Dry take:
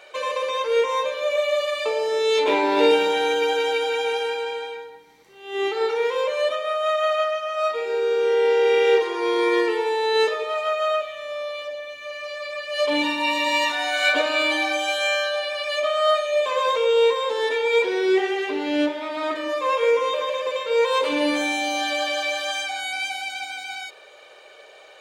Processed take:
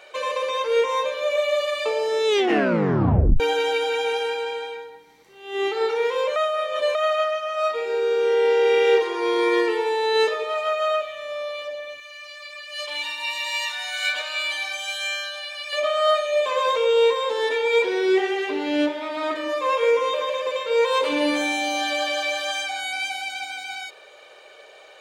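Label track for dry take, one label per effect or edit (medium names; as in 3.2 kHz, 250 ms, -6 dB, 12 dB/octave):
2.270000	2.270000	tape stop 1.13 s
6.360000	6.950000	reverse
12.000000	15.730000	amplifier tone stack bass-middle-treble 10-0-10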